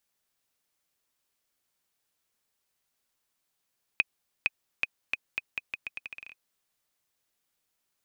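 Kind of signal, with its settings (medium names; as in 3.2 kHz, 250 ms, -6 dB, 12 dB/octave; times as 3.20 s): bouncing ball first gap 0.46 s, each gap 0.81, 2.51 kHz, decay 30 ms -9.5 dBFS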